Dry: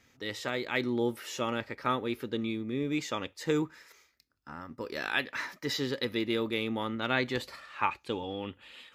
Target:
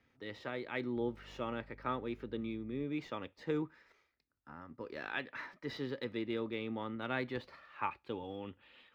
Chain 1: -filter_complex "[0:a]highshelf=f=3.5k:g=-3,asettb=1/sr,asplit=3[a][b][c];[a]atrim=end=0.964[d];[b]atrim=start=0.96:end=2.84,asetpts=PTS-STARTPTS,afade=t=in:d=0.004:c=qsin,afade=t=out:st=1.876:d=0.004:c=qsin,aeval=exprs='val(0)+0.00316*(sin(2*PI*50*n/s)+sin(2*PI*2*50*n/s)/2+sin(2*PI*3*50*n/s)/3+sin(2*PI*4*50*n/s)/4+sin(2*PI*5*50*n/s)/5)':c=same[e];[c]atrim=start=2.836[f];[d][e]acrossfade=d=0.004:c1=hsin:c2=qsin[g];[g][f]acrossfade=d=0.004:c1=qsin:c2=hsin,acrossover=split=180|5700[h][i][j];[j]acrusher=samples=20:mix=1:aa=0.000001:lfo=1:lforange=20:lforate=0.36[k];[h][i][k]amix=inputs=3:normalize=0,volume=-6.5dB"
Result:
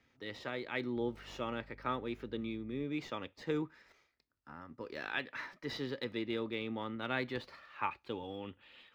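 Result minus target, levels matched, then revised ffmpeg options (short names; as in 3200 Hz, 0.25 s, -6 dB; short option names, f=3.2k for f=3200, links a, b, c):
8000 Hz band +5.5 dB
-filter_complex "[0:a]highshelf=f=3.5k:g=-11,asettb=1/sr,asplit=3[a][b][c];[a]atrim=end=0.964[d];[b]atrim=start=0.96:end=2.84,asetpts=PTS-STARTPTS,afade=t=in:d=0.004:c=qsin,afade=t=out:st=1.876:d=0.004:c=qsin,aeval=exprs='val(0)+0.00316*(sin(2*PI*50*n/s)+sin(2*PI*2*50*n/s)/2+sin(2*PI*3*50*n/s)/3+sin(2*PI*4*50*n/s)/4+sin(2*PI*5*50*n/s)/5)':c=same[e];[c]atrim=start=2.836[f];[d][e]acrossfade=d=0.004:c1=hsin:c2=qsin[g];[g][f]acrossfade=d=0.004:c1=qsin:c2=hsin,acrossover=split=180|5700[h][i][j];[j]acrusher=samples=20:mix=1:aa=0.000001:lfo=1:lforange=20:lforate=0.36[k];[h][i][k]amix=inputs=3:normalize=0,volume=-6.5dB"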